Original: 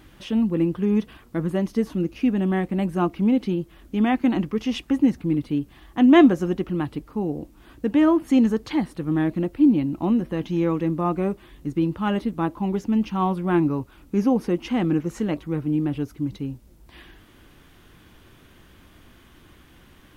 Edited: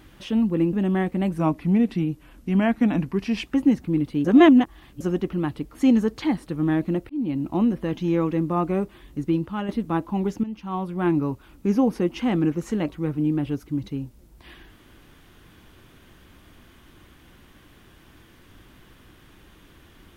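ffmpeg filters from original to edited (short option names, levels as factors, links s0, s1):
-filter_complex "[0:a]asplit=10[s0][s1][s2][s3][s4][s5][s6][s7][s8][s9];[s0]atrim=end=0.732[s10];[s1]atrim=start=2.298:end=2.954[s11];[s2]atrim=start=2.95:end=4.8,asetpts=PTS-STARTPTS,asetrate=39690,aresample=44100[s12];[s3]atrim=start=4.796:end=5.612[s13];[s4]atrim=start=5.608:end=6.372,asetpts=PTS-STARTPTS,areverse[s14];[s5]atrim=start=6.368:end=7.112[s15];[s6]atrim=start=8.228:end=9.58,asetpts=PTS-STARTPTS,afade=t=out:st=1.348:d=0.004:c=hsin[s16];[s7]atrim=start=9.58:end=12.17,asetpts=PTS-STARTPTS,afade=t=in:d=0.33,afade=t=out:st=2.21:d=0.38:silence=0.398107[s17];[s8]atrim=start=12.17:end=12.92,asetpts=PTS-STARTPTS,afade=t=in:d=0.004:c=hsin:silence=0.398107,afade=t=out:st=0.746:d=0.004:c=hsin:silence=0.188365[s18];[s9]atrim=start=12.92,asetpts=PTS-STARTPTS,afade=t=in:d=0.84:silence=0.188365[s19];[s10][s11]acrossfade=d=0.004:c1=hsin:c2=hsin[s20];[s20][s12]acrossfade=d=0.004:c1=hsin:c2=hsin[s21];[s21][s13]acrossfade=d=0.004:c1=hsin:c2=hsin[s22];[s22][s14]acrossfade=d=0.004:c1=hsin:c2=hsin[s23];[s23][s15]acrossfade=d=0.004:c1=hsin:c2=hsin[s24];[s16][s17][s18][s19]concat=n=4:v=0:a=1[s25];[s24][s25]acrossfade=d=0.004:c1=hsin:c2=hsin"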